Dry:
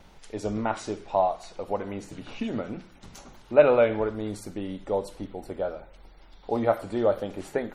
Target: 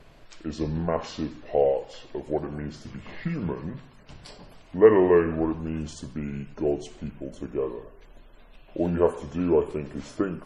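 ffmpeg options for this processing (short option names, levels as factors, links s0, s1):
-af "asetrate=32667,aresample=44100,volume=1.12"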